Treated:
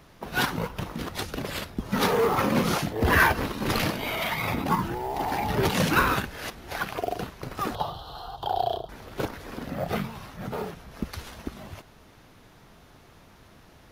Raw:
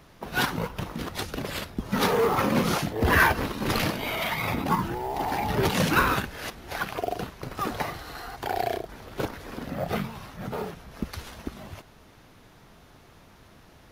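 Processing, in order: 7.75–8.89 EQ curve 160 Hz 0 dB, 250 Hz -10 dB, 840 Hz +4 dB, 1300 Hz -3 dB, 2200 Hz -29 dB, 3200 Hz +7 dB, 6200 Hz -12 dB, 9500 Hz -12 dB, 15000 Hz -8 dB

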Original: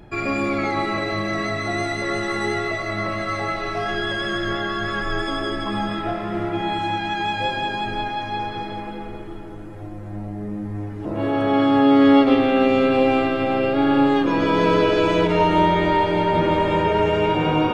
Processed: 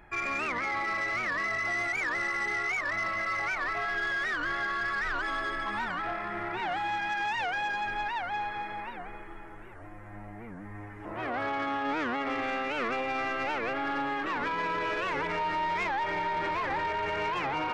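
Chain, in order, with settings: ten-band EQ 125 Hz -8 dB, 250 Hz -6 dB, 500 Hz -4 dB, 1000 Hz +5 dB, 2000 Hz +12 dB, 4000 Hz -9 dB; limiter -12 dBFS, peak gain reduction 7.5 dB; soft clip -16.5 dBFS, distortion -17 dB; record warp 78 rpm, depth 250 cents; gain -8.5 dB

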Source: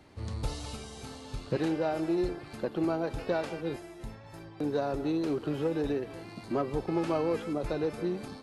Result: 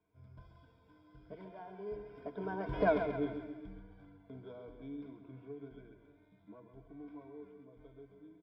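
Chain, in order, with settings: Doppler pass-by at 2.9, 49 m/s, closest 2.9 m; ripple EQ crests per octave 1.7, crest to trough 15 dB; compressor 2:1, threshold -41 dBFS, peak gain reduction 10.5 dB; air absorption 390 m; notches 60/120 Hz; feedback echo 0.134 s, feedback 48%, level -9 dB; gain +9.5 dB

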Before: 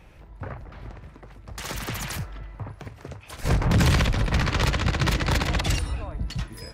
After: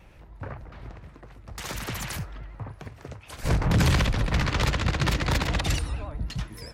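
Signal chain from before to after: vibrato 9.6 Hz 83 cents; gain -1.5 dB

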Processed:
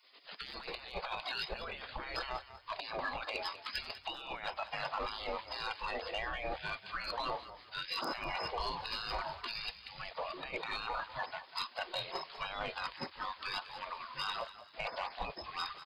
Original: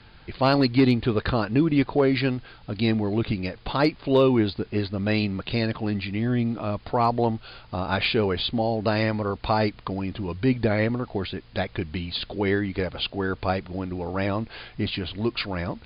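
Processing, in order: 2.34–3.07 HPF 170 Hz -> 50 Hz 6 dB/oct; spectral gate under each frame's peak -25 dB weak; spectral noise reduction 13 dB; 9.47–10.11 band shelf 650 Hz -9.5 dB 2.9 oct; negative-ratio compressor -51 dBFS, ratio -1; soft clip -38 dBFS, distortion -21 dB; frequency-shifting echo 0.195 s, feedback 32%, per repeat +38 Hz, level -14 dB; gain +11.5 dB

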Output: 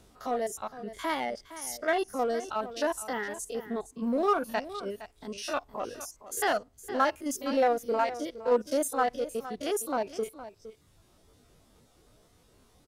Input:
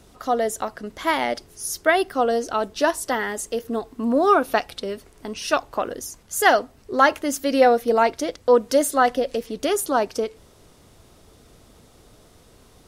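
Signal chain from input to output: stepped spectrum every 50 ms; reverb removal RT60 1.3 s; in parallel at -7 dB: overloaded stage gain 23.5 dB; on the sum: echo 0.463 s -14 dB; gain -8.5 dB

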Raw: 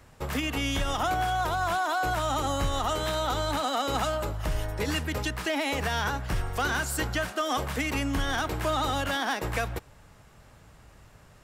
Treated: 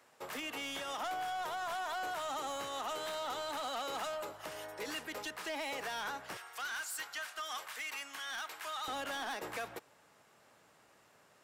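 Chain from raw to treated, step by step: HPF 400 Hz 12 dB/oct, from 6.37 s 1200 Hz, from 8.88 s 310 Hz; soft clip -27.5 dBFS, distortion -13 dB; gain -6.5 dB

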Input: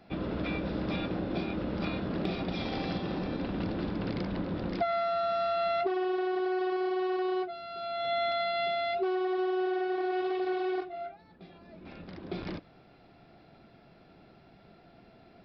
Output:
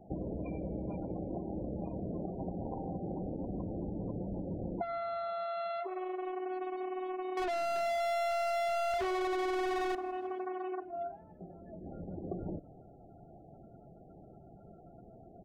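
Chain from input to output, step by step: Wiener smoothing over 41 samples; graphic EQ 250/1000/4000 Hz -4/+11/+3 dB; compressor 16:1, threshold -39 dBFS, peak gain reduction 19 dB; loudest bins only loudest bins 32; 7.37–9.95 overdrive pedal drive 36 dB, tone 2900 Hz, clips at -32.5 dBFS; frequency-shifting echo 0.161 s, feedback 53%, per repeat -38 Hz, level -22 dB; gain +5 dB

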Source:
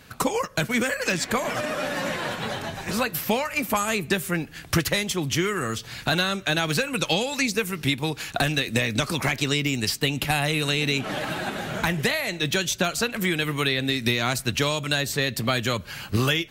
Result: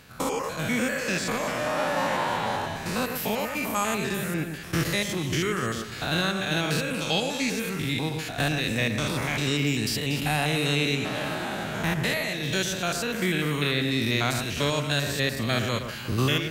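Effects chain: stepped spectrum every 0.1 s; 1.66–2.66 bell 900 Hz +11 dB 0.57 oct; echo with dull and thin repeats by turns 0.119 s, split 2100 Hz, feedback 62%, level -7.5 dB

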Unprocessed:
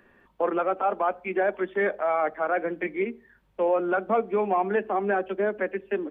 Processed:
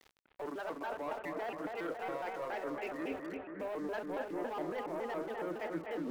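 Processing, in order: bell 150 Hz -5 dB 1.3 oct; sample leveller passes 2; reverse; compressor 20:1, threshold -40 dBFS, peak gain reduction 24 dB; reverse; whine 680 Hz -66 dBFS; sample gate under -55.5 dBFS; on a send: analogue delay 0.247 s, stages 4096, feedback 68%, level -4 dB; on the sum: shaped vibrato square 3.6 Hz, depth 250 cents; gain +1.5 dB

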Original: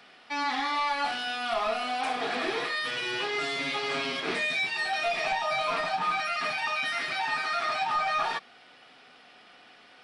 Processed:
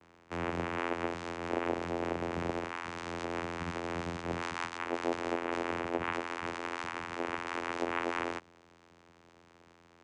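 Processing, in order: steep low-pass 3200 Hz, from 7.44 s 8600 Hz; vocoder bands 4, saw 85.4 Hz; gain -5.5 dB

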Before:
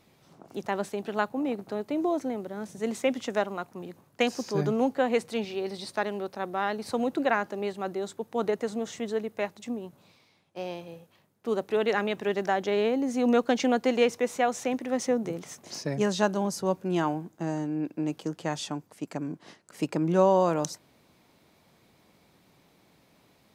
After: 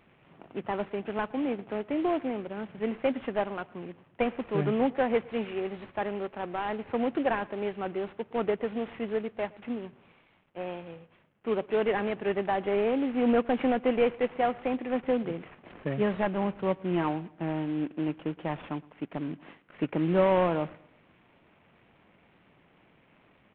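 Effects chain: CVSD 16 kbps; wow and flutter 24 cents; feedback echo 0.115 s, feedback 40%, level -23 dB

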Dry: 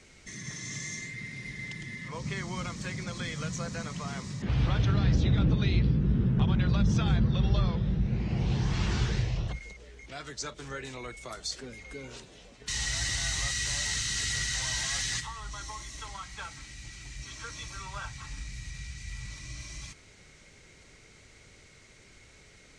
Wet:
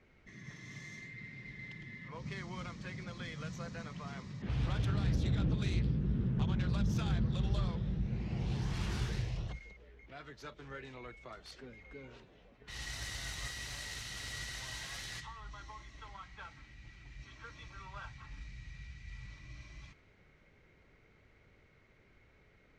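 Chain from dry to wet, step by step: self-modulated delay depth 0.16 ms; low-pass opened by the level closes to 1900 Hz, open at -24 dBFS; gain -7.5 dB

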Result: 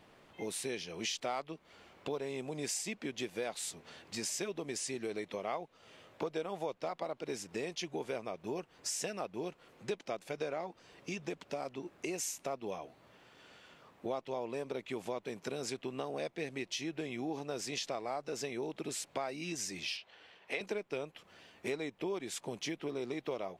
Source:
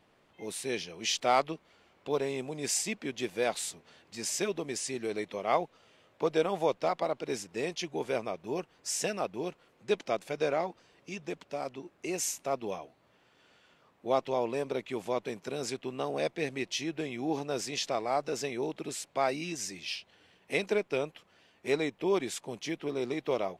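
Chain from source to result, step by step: 19.97–20.61 three-band isolator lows -13 dB, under 430 Hz, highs -13 dB, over 5100 Hz; compressor 4:1, threshold -42 dBFS, peak gain reduction 18 dB; gain +5 dB

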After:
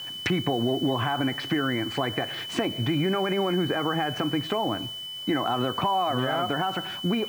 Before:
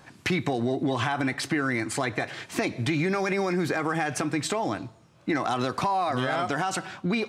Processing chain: treble ducked by the level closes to 1600 Hz, closed at -24 dBFS; whine 3000 Hz -35 dBFS; requantised 8-bit, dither none; gain +1 dB

